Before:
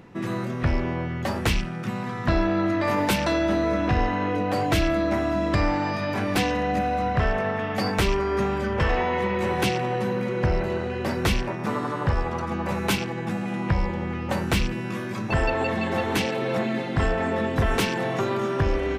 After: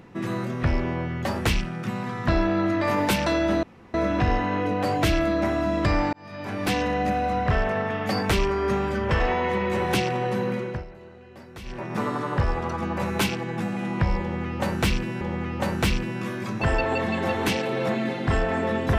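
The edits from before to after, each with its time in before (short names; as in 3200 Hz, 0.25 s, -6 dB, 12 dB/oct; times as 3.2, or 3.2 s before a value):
3.63 insert room tone 0.31 s
5.82–6.51 fade in
10.22–11.64 dip -18.5 dB, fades 0.32 s
13.9–14.9 loop, 2 plays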